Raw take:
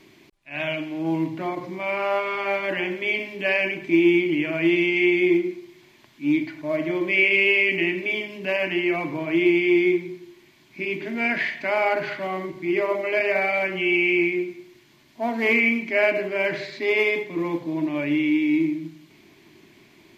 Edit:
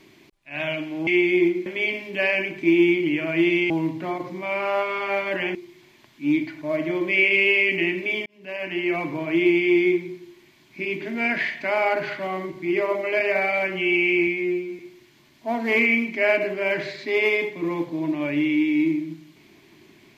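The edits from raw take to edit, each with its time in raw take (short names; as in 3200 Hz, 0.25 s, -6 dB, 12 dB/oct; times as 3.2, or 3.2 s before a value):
1.07–2.92 swap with 4.96–5.55
8.26–8.97 fade in
14.27–14.53 stretch 2×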